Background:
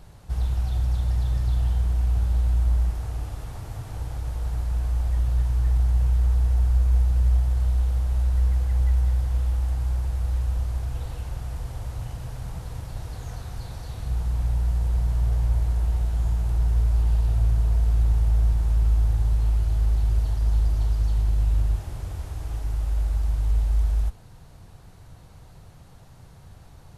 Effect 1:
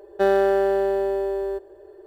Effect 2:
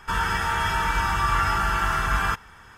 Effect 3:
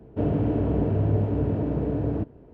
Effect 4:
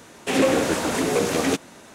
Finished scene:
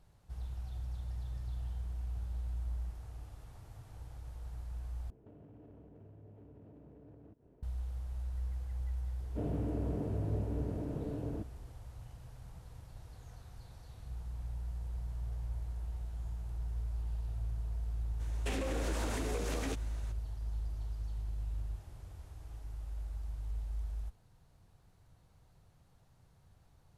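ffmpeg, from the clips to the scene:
-filter_complex "[3:a]asplit=2[s0][s1];[0:a]volume=0.141[s2];[s0]acompressor=threshold=0.0158:ratio=20:attack=0.29:release=100:knee=1:detection=rms[s3];[4:a]acompressor=threshold=0.0631:ratio=6:attack=3.2:release=140:knee=1:detection=peak[s4];[s2]asplit=2[s5][s6];[s5]atrim=end=5.104[s7];[s3]atrim=end=2.53,asetpts=PTS-STARTPTS,volume=0.2[s8];[s6]atrim=start=7.626[s9];[s1]atrim=end=2.53,asetpts=PTS-STARTPTS,volume=0.224,afade=t=in:d=0.004:c=hsin,afade=t=out:st=2.526:d=0.004:c=hsin,adelay=9190[s10];[s4]atrim=end=1.94,asetpts=PTS-STARTPTS,volume=0.299,afade=t=in:d=0.02,afade=t=out:st=1.92:d=0.02,adelay=18190[s11];[s7][s8]acrossfade=d=0.004:c1=hsin:c2=hsin[s12];[s12][s9]acrossfade=d=0.004:c1=hsin:c2=hsin[s13];[s13][s10][s11]amix=inputs=3:normalize=0"

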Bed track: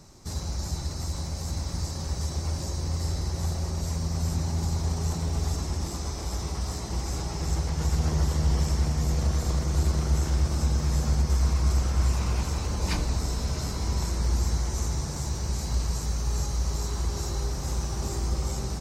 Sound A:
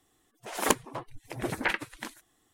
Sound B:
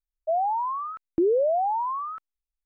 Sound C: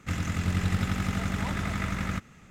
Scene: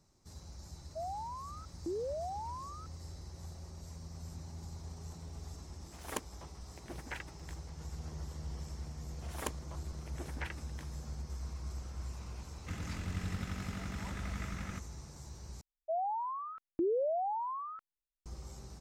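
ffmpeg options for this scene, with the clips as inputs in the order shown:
-filter_complex "[2:a]asplit=2[s0][s1];[1:a]asplit=2[s2][s3];[0:a]volume=0.119[s4];[s2]aeval=exprs='sgn(val(0))*max(abs(val(0))-0.00447,0)':c=same[s5];[s4]asplit=2[s6][s7];[s6]atrim=end=15.614[s8];[s1]atrim=end=2.65,asetpts=PTS-STARTPTS,volume=0.316[s9];[s7]atrim=start=18.256[s10];[s0]atrim=end=2.65,asetpts=PTS-STARTPTS,volume=0.158,afade=t=in:d=0.004:c=hsin,afade=t=out:st=2.646:d=0.004:c=hsin,adelay=680[s11];[s5]atrim=end=2.53,asetpts=PTS-STARTPTS,volume=0.188,afade=t=in:d=0.004:c=hsin,afade=t=out:st=2.526:d=0.004:c=hsin,adelay=5460[s12];[s3]atrim=end=2.53,asetpts=PTS-STARTPTS,volume=0.178,afade=t=in:d=0.004:c=hsin,afade=t=out:st=2.526:d=0.004:c=hsin,adelay=8760[s13];[3:a]atrim=end=2.5,asetpts=PTS-STARTPTS,volume=0.251,afade=t=in:d=0.004:c=hsin,afade=t=out:st=2.496:d=0.004:c=hsin,adelay=12600[s14];[s8][s9]acrossfade=d=0.004:c1=hsin:c2=hsin[s15];[s15][s10]acrossfade=d=0.004:c1=hsin:c2=hsin[s16];[s16][s11][s12][s13][s14]amix=inputs=5:normalize=0"

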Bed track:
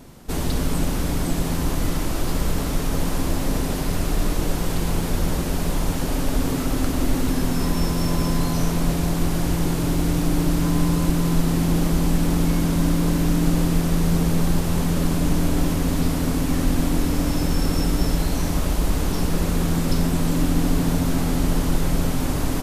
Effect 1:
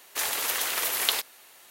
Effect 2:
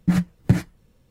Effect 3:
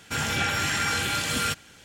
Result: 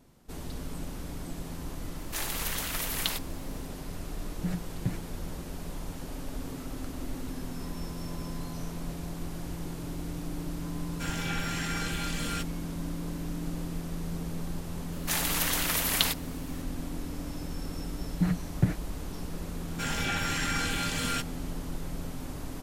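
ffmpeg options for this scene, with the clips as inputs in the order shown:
-filter_complex "[1:a]asplit=2[s0][s1];[2:a]asplit=2[s2][s3];[3:a]asplit=2[s4][s5];[0:a]volume=0.168[s6];[s4]acontrast=62[s7];[s3]acrossover=split=3000[s8][s9];[s9]acompressor=threshold=0.00501:ratio=4:attack=1:release=60[s10];[s8][s10]amix=inputs=2:normalize=0[s11];[s0]atrim=end=1.7,asetpts=PTS-STARTPTS,volume=0.501,afade=t=in:d=0.004:c=hsin,afade=t=out:st=1.696:d=0.004:c=hsin,adelay=1970[s12];[s2]atrim=end=1.1,asetpts=PTS-STARTPTS,volume=0.2,afade=t=in:d=0.004:c=hsin,afade=t=out:st=1.096:d=0.004:c=hsin,adelay=4360[s13];[s7]atrim=end=1.84,asetpts=PTS-STARTPTS,volume=0.168,afade=t=in:d=0.004:c=hsin,afade=t=out:st=1.836:d=0.004:c=hsin,adelay=10890[s14];[s1]atrim=end=1.7,asetpts=PTS-STARTPTS,volume=0.891,afade=t=in:d=0.004:c=hsin,afade=t=out:st=1.696:d=0.004:c=hsin,adelay=657972S[s15];[s11]atrim=end=1.1,asetpts=PTS-STARTPTS,volume=0.422,afade=t=in:d=0.004:c=hsin,afade=t=out:st=1.096:d=0.004:c=hsin,adelay=18130[s16];[s5]atrim=end=1.84,asetpts=PTS-STARTPTS,volume=0.531,afade=t=in:d=0.004:c=hsin,afade=t=out:st=1.836:d=0.004:c=hsin,adelay=19680[s17];[s6][s12][s13][s14][s15][s16][s17]amix=inputs=7:normalize=0"

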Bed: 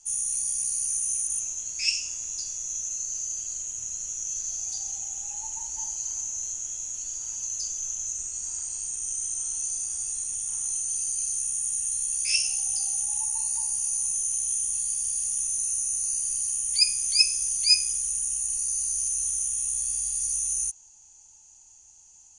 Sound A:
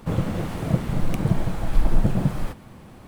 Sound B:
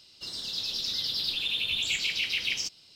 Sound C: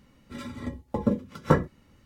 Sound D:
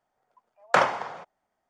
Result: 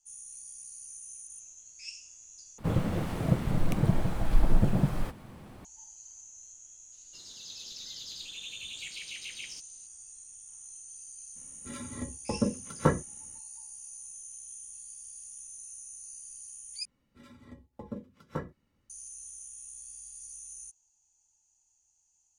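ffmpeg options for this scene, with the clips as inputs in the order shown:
-filter_complex "[3:a]asplit=2[s0][s1];[0:a]volume=0.126,asplit=3[s2][s3][s4];[s2]atrim=end=2.584[s5];[1:a]atrim=end=3.07,asetpts=PTS-STARTPTS,volume=0.631[s6];[s3]atrim=start=5.646:end=16.854[s7];[s1]atrim=end=2.05,asetpts=PTS-STARTPTS,volume=0.168[s8];[s4]atrim=start=18.896[s9];[2:a]atrim=end=2.95,asetpts=PTS-STARTPTS,volume=0.224,afade=t=in:d=0.004:c=hsin,afade=t=out:st=2.946:d=0.004:c=hsin,adelay=6920[s10];[s0]atrim=end=2.05,asetpts=PTS-STARTPTS,volume=0.631,afade=t=in:d=0.02,afade=t=out:st=2.03:d=0.02,adelay=11350[s11];[s5][s6]acrossfade=d=0.004:c1=hsin:c2=hsin[s12];[s12][s7]acrossfade=d=0.004:c1=hsin:c2=hsin[s13];[s13][s8]acrossfade=d=0.004:c1=hsin:c2=hsin[s14];[s14][s9]acrossfade=d=0.004:c1=hsin:c2=hsin[s15];[s15][s10][s11]amix=inputs=3:normalize=0"

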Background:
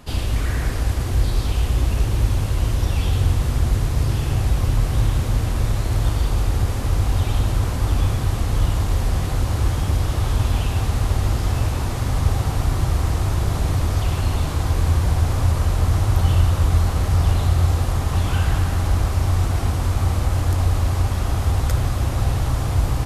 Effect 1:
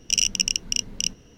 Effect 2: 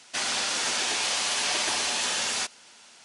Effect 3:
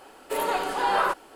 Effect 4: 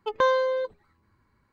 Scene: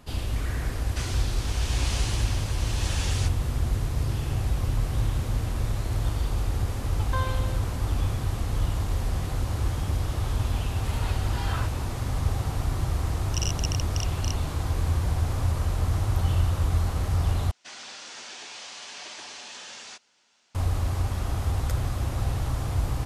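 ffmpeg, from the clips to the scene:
-filter_complex "[2:a]asplit=2[s0][s1];[0:a]volume=0.447[s2];[s0]tremolo=f=0.9:d=0.58[s3];[4:a]highpass=f=660:w=0.5412,highpass=f=660:w=1.3066[s4];[3:a]bandpass=f=3900:t=q:w=0.78:csg=0[s5];[1:a]acrusher=bits=11:mix=0:aa=0.000001[s6];[s1]lowpass=f=7500:w=0.5412,lowpass=f=7500:w=1.3066[s7];[s2]asplit=2[s8][s9];[s8]atrim=end=17.514[s10];[s7]atrim=end=3.04,asetpts=PTS-STARTPTS,volume=0.211[s11];[s9]atrim=start=20.546[s12];[s3]atrim=end=3.04,asetpts=PTS-STARTPTS,volume=0.447,afade=t=in:d=0.004:c=hsin,afade=t=out:st=3.036:d=0.004:c=hsin,adelay=820[s13];[s4]atrim=end=1.52,asetpts=PTS-STARTPTS,volume=0.422,afade=t=in:d=0.004:c=hsin,afade=t=out:st=1.516:d=0.004:c=hsin,adelay=6930[s14];[s5]atrim=end=1.35,asetpts=PTS-STARTPTS,volume=0.562,afade=t=in:d=0.004:c=hsin,afade=t=out:st=1.346:d=0.004:c=hsin,adelay=10540[s15];[s6]atrim=end=1.37,asetpts=PTS-STARTPTS,volume=0.266,afade=t=in:d=0.004:c=hsin,afade=t=out:st=1.366:d=0.004:c=hsin,adelay=13240[s16];[s10][s11]acrossfade=d=0.004:c1=hsin:c2=hsin[s17];[s17][s12]acrossfade=d=0.004:c1=hsin:c2=hsin[s18];[s18][s13][s14][s15][s16]amix=inputs=5:normalize=0"

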